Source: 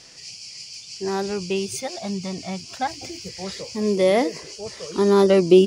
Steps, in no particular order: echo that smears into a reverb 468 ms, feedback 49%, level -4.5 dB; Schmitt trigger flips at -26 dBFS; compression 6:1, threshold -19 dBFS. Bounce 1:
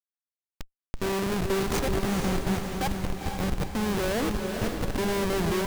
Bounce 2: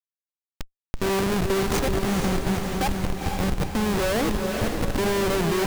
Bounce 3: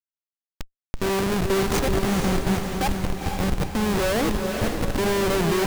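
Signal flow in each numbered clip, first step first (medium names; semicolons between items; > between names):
compression > Schmitt trigger > echo that smears into a reverb; Schmitt trigger > echo that smears into a reverb > compression; Schmitt trigger > compression > echo that smears into a reverb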